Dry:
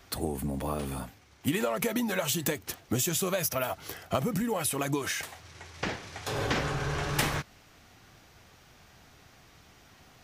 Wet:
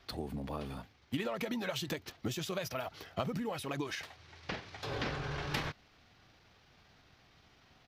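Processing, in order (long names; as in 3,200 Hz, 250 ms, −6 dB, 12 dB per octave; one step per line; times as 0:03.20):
high shelf with overshoot 6,100 Hz −10.5 dB, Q 1.5
tempo change 1.3×
level −7 dB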